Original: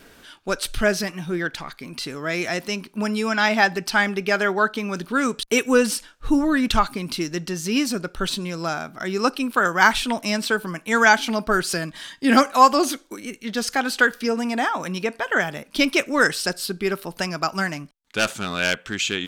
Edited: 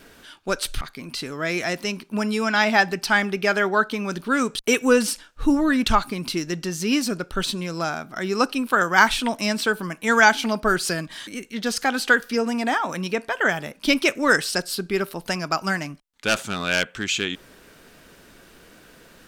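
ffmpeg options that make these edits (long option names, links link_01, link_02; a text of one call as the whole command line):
ffmpeg -i in.wav -filter_complex "[0:a]asplit=3[link_01][link_02][link_03];[link_01]atrim=end=0.812[link_04];[link_02]atrim=start=1.648:end=12.112[link_05];[link_03]atrim=start=13.178[link_06];[link_04][link_05]acrossfade=duration=0.004:curve1=hsin:curve2=hsin[link_07];[link_07][link_06]acrossfade=duration=0.004:curve1=hsin:curve2=hsin" out.wav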